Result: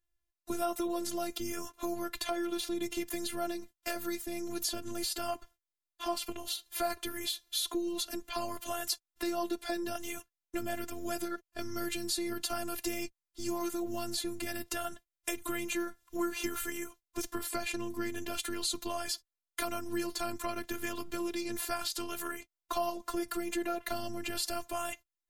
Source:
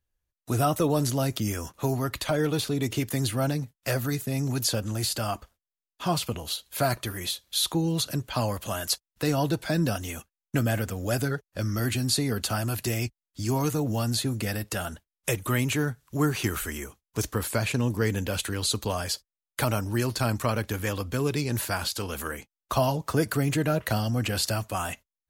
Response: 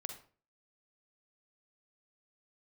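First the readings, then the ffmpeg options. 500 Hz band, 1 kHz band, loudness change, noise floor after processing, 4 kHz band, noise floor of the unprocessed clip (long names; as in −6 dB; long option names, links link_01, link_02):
−7.5 dB, −6.0 dB, −8.5 dB, below −85 dBFS, −6.5 dB, below −85 dBFS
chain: -af "acompressor=threshold=-28dB:ratio=2.5,afftfilt=real='hypot(re,im)*cos(PI*b)':imag='0':win_size=512:overlap=0.75"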